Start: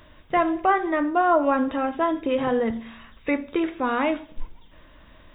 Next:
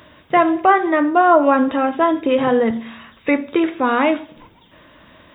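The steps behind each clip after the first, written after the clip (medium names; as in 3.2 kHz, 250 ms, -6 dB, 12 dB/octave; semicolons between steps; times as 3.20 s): high-pass 110 Hz 12 dB/octave; trim +7 dB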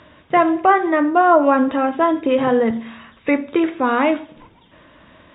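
distance through air 130 m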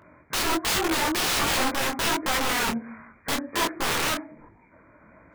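knee-point frequency compression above 1 kHz 1.5:1; integer overflow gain 14.5 dB; detune thickener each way 46 cents; trim -1.5 dB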